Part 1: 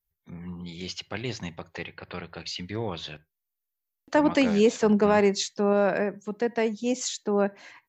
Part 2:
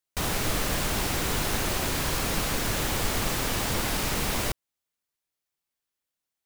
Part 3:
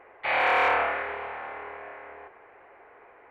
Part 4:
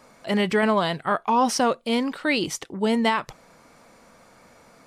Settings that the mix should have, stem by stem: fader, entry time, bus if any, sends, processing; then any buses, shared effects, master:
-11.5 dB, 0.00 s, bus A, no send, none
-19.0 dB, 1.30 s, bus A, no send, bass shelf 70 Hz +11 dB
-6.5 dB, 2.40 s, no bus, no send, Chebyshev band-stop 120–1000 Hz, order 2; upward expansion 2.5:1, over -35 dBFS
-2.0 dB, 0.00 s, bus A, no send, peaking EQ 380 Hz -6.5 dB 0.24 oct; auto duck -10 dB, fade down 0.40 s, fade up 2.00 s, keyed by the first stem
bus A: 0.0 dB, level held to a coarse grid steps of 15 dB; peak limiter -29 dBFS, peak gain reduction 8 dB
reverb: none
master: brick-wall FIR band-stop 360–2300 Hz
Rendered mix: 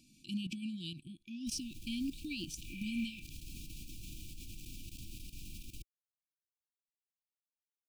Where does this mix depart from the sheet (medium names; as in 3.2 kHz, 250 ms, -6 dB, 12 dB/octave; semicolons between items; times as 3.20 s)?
stem 1: muted; stem 3 -6.5 dB -> -15.0 dB